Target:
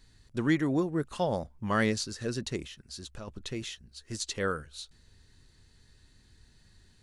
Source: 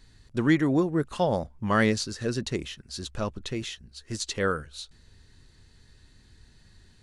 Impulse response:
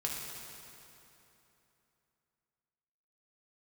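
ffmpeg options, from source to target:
-filter_complex "[0:a]highshelf=f=5.7k:g=4,asplit=3[a][b][c];[a]afade=t=out:st=2.66:d=0.02[d];[b]acompressor=threshold=-35dB:ratio=6,afade=t=in:st=2.66:d=0.02,afade=t=out:st=3.27:d=0.02[e];[c]afade=t=in:st=3.27:d=0.02[f];[d][e][f]amix=inputs=3:normalize=0,volume=-4.5dB"

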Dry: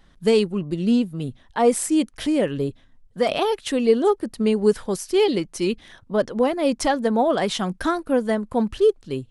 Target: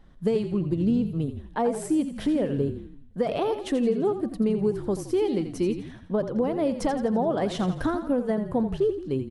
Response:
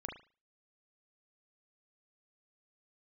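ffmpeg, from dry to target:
-filter_complex "[0:a]acompressor=threshold=-22dB:ratio=6,tiltshelf=f=1.3k:g=6,asplit=7[a][b][c][d][e][f][g];[b]adelay=84,afreqshift=-34,volume=-10dB[h];[c]adelay=168,afreqshift=-68,volume=-15.8dB[i];[d]adelay=252,afreqshift=-102,volume=-21.7dB[j];[e]adelay=336,afreqshift=-136,volume=-27.5dB[k];[f]adelay=420,afreqshift=-170,volume=-33.4dB[l];[g]adelay=504,afreqshift=-204,volume=-39.2dB[m];[a][h][i][j][k][l][m]amix=inputs=7:normalize=0,volume=-4dB"

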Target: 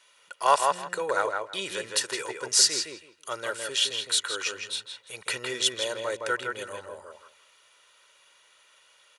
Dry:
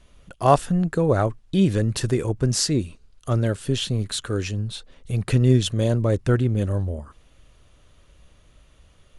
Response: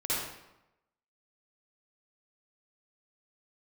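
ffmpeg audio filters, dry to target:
-filter_complex "[0:a]highpass=1.1k,aecho=1:1:2.1:0.5,asplit=2[a][b];[b]adelay=163,lowpass=f=2.8k:p=1,volume=-3.5dB,asplit=2[c][d];[d]adelay=163,lowpass=f=2.8k:p=1,volume=0.2,asplit=2[e][f];[f]adelay=163,lowpass=f=2.8k:p=1,volume=0.2[g];[c][e][g]amix=inputs=3:normalize=0[h];[a][h]amix=inputs=2:normalize=0,volume=3dB"

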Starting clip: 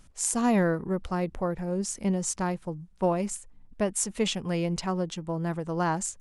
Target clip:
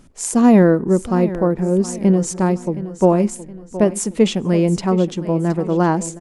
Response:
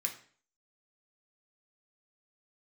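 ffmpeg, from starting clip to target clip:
-filter_complex "[0:a]equalizer=f=300:t=o:w=2.4:g=11.5,aecho=1:1:719|1438|2157|2876:0.188|0.0753|0.0301|0.0121,asplit=2[a][b];[1:a]atrim=start_sample=2205,lowpass=4.3k[c];[b][c]afir=irnorm=-1:irlink=0,volume=-18.5dB[d];[a][d]amix=inputs=2:normalize=0,volume=3.5dB"

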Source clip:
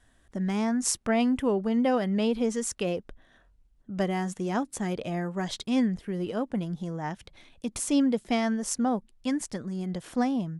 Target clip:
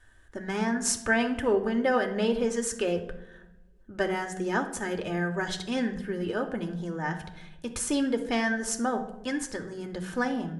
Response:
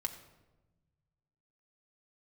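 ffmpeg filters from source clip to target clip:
-filter_complex "[0:a]equalizer=f=250:t=o:w=0.33:g=-10,equalizer=f=400:t=o:w=0.33:g=6,equalizer=f=1.6k:t=o:w=0.33:g=11[a];[1:a]atrim=start_sample=2205,asetrate=61740,aresample=44100[b];[a][b]afir=irnorm=-1:irlink=0,volume=3.5dB"

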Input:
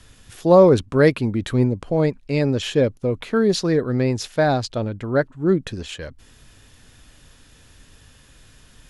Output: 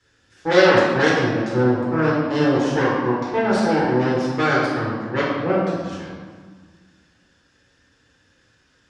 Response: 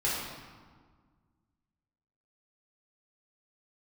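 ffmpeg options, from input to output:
-filter_complex "[0:a]aeval=exprs='0.75*(cos(1*acos(clip(val(0)/0.75,-1,1)))-cos(1*PI/2))+0.0299*(cos(7*acos(clip(val(0)/0.75,-1,1)))-cos(7*PI/2))+0.299*(cos(8*acos(clip(val(0)/0.75,-1,1)))-cos(8*PI/2))':c=same,highpass=100,equalizer=f=140:t=q:w=4:g=-8,equalizer=f=300:t=q:w=4:g=4,equalizer=f=530:t=q:w=4:g=4,equalizer=f=1.6k:t=q:w=4:g=9,equalizer=f=5.4k:t=q:w=4:g=4,lowpass=f=7.6k:w=0.5412,lowpass=f=7.6k:w=1.3066[a];[1:a]atrim=start_sample=2205[b];[a][b]afir=irnorm=-1:irlink=0,volume=-15dB"

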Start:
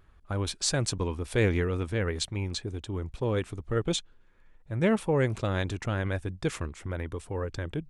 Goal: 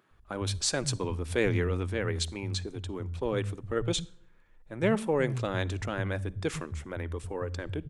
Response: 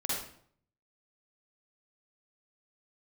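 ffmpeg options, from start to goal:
-filter_complex "[0:a]acrossover=split=160[a][b];[a]adelay=110[c];[c][b]amix=inputs=2:normalize=0,asplit=2[d][e];[1:a]atrim=start_sample=2205[f];[e][f]afir=irnorm=-1:irlink=0,volume=-26dB[g];[d][g]amix=inputs=2:normalize=0,volume=-1dB"

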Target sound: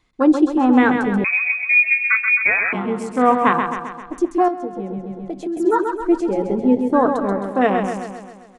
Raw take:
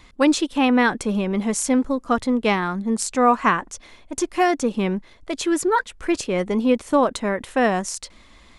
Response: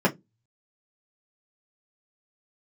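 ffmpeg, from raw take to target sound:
-filter_complex "[0:a]afwtdn=0.0708,aecho=1:1:132|264|396|528|660|792|924:0.501|0.281|0.157|0.088|0.0493|0.0276|0.0155,asplit=2[a][b];[1:a]atrim=start_sample=2205,asetrate=36162,aresample=44100[c];[b][c]afir=irnorm=-1:irlink=0,volume=-25.5dB[d];[a][d]amix=inputs=2:normalize=0,asettb=1/sr,asplit=3[e][f][g];[e]atrim=end=1.244[h];[f]atrim=start=1.24:end=2.73,asetpts=PTS-STARTPTS,afade=t=in:d=0.004:c=qsin,afade=t=out:st=1.486:d=0.004:c=qsin,lowpass=f=2.3k:t=q:w=0.5098,lowpass=f=2.3k:t=q:w=0.6013,lowpass=f=2.3k:t=q:w=0.9,lowpass=f=2.3k:t=q:w=2.563,afreqshift=-2700[i];[g]atrim=start=2.726[j];[h][i]acrossfade=d=0.004:c1=hsin:c2=qsin[k];[k][j]acrossfade=d=0.004:c1=qsin:c2=hsin,asettb=1/sr,asplit=3[l][m][n];[l]atrim=end=4.484[o];[m]atrim=start=4.48:end=5.57,asetpts=PTS-STARTPTS,afade=t=in:d=0.004:c=qsin,afade=t=out:st=1.086:d=0.004:c=qsin,acompressor=threshold=-25dB:ratio=4[p];[n]atrim=start=5.566[q];[o][p]acrossfade=d=0.004:c1=hsin:c2=qsin[r];[r][q]acrossfade=d=0.004:c1=qsin:c2=hsin"

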